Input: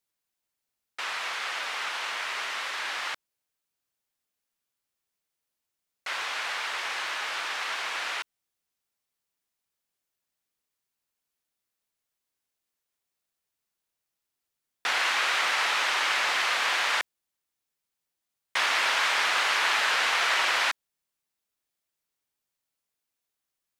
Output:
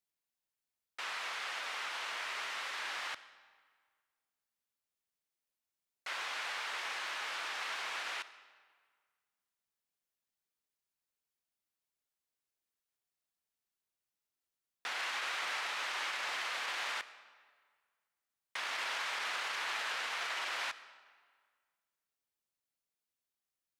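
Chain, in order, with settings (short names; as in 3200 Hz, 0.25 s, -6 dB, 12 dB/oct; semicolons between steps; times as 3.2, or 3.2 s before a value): limiter -21.5 dBFS, peak gain reduction 9.5 dB; digital reverb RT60 1.7 s, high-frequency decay 0.8×, pre-delay 25 ms, DRR 14.5 dB; gain -7.5 dB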